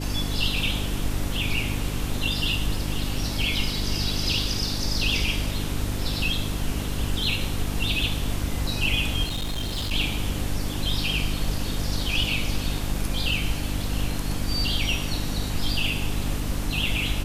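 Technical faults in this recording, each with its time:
hum 50 Hz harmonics 6 -30 dBFS
9.24–9.93 clipped -24.5 dBFS

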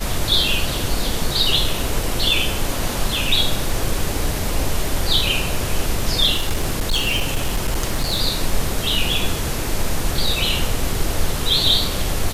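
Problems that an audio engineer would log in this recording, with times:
6.36–8.21 clipped -14.5 dBFS

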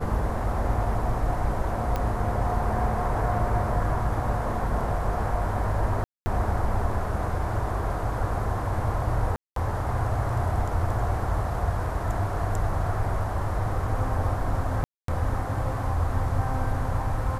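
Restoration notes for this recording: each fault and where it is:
1.96 pop -15 dBFS
6.04–6.26 gap 0.22 s
9.36–9.56 gap 0.203 s
14.84–15.08 gap 0.243 s

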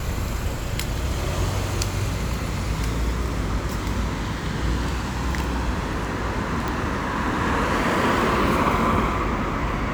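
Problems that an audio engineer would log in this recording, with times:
6.68 pop

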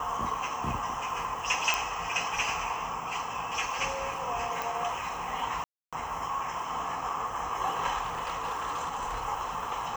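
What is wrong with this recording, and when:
1.74 pop
4.62 pop
5.64–5.93 gap 0.286 s
8.02–9.26 clipped -28.5 dBFS

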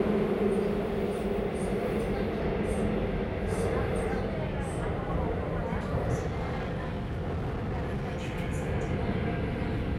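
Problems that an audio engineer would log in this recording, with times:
6.26–8.35 clipped -28.5 dBFS

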